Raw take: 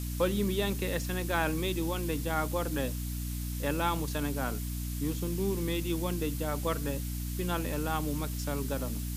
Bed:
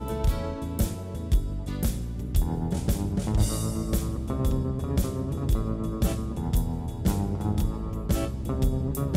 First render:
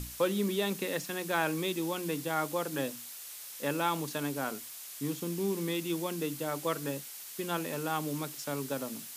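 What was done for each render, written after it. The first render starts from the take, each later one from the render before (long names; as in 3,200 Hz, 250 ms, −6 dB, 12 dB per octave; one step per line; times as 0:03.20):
mains-hum notches 60/120/180/240/300 Hz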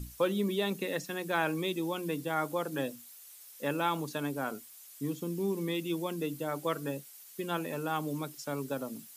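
broadband denoise 11 dB, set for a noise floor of −45 dBFS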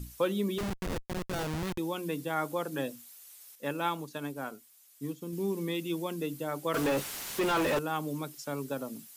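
0:00.58–0:01.78: comparator with hysteresis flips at −30.5 dBFS
0:03.55–0:05.33: expander for the loud parts, over −43 dBFS
0:06.74–0:07.79: mid-hump overdrive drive 38 dB, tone 2,100 Hz, clips at −20 dBFS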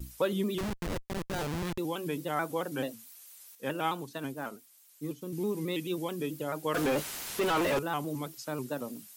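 pitch modulation by a square or saw wave square 4.6 Hz, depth 100 cents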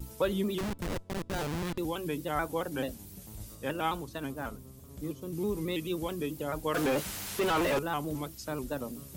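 mix in bed −22 dB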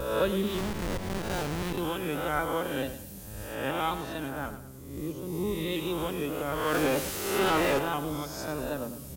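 peak hold with a rise ahead of every peak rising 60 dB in 0.97 s
repeating echo 107 ms, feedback 37%, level −12 dB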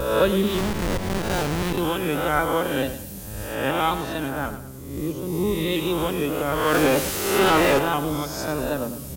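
level +7.5 dB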